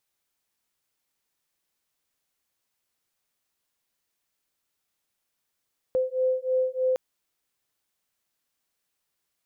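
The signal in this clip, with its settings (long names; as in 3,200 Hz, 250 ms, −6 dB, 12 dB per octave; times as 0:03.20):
two tones that beat 513 Hz, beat 3.2 Hz, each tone −25.5 dBFS 1.01 s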